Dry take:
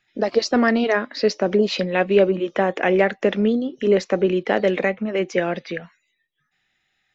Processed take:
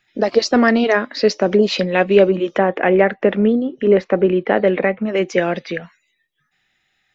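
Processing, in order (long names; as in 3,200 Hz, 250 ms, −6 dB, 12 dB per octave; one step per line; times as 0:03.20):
0:02.58–0:05.04: low-pass filter 2,300 Hz 12 dB per octave
level +4 dB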